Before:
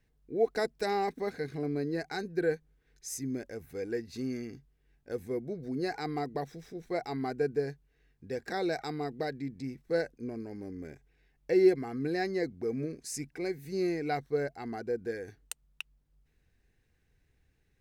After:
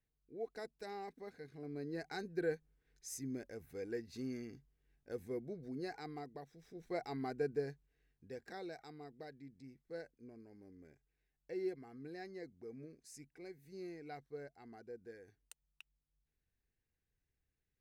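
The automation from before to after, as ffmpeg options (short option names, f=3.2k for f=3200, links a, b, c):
-af "volume=2.5dB,afade=t=in:st=1.55:d=0.58:silence=0.375837,afade=t=out:st=5.39:d=1.12:silence=0.334965,afade=t=in:st=6.51:d=0.4:silence=0.316228,afade=t=out:st=7.6:d=1.16:silence=0.316228"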